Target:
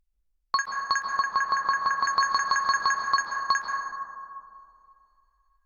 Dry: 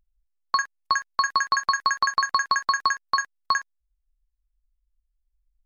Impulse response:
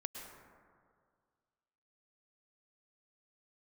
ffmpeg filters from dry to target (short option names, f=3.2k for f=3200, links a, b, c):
-filter_complex "[0:a]asettb=1/sr,asplit=3[a][b][c];[a]atrim=end=1.074[d];[b]atrim=start=1.07:end=2.05,asetpts=PTS-STARTPTS,afade=t=in:d=0.004:c=qsin,afade=t=out:st=0.976:d=0.004:c=qsin,lowpass=f=2.1k:p=1[e];[c]atrim=start=2.046[f];[d][e]acrossfade=d=0.004:c1=hsin:c2=qsin[g];[g][f]acrossfade=d=0.004:c1=qsin:c2=hsin[h];[1:a]atrim=start_sample=2205,asetrate=34839,aresample=44100[i];[h][i]afir=irnorm=-1:irlink=0"